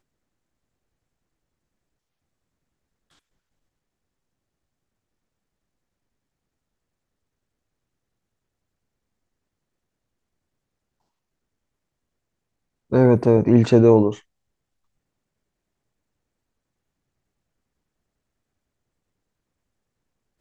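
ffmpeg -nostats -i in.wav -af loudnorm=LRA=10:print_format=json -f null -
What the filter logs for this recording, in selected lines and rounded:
"input_i" : "-16.4",
"input_tp" : "-1.8",
"input_lra" : "14.1",
"input_thresh" : "-27.9",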